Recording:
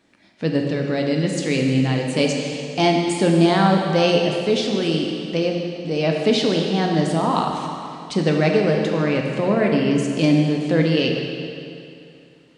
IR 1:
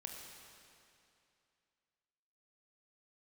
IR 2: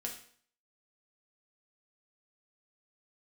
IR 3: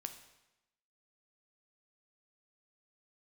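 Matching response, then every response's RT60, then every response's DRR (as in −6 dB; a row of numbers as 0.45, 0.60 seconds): 1; 2.6, 0.55, 0.95 seconds; 0.5, −0.5, 7.0 decibels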